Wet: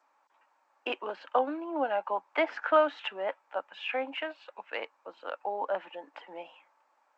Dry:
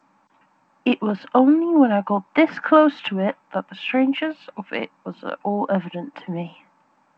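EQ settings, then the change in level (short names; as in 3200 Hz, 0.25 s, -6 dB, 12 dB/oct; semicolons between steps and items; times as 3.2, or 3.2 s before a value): HPF 440 Hz 24 dB/oct; -8.0 dB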